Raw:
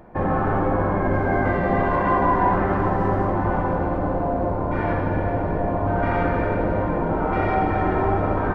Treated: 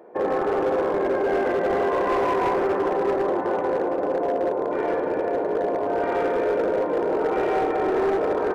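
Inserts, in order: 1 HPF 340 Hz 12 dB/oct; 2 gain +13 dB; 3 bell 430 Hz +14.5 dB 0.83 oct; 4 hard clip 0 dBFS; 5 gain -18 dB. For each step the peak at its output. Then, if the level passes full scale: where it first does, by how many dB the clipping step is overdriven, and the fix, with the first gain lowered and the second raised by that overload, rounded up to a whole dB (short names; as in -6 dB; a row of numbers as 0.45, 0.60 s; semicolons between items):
-9.0, +4.0, +9.0, 0.0, -18.0 dBFS; step 2, 9.0 dB; step 2 +4 dB, step 5 -9 dB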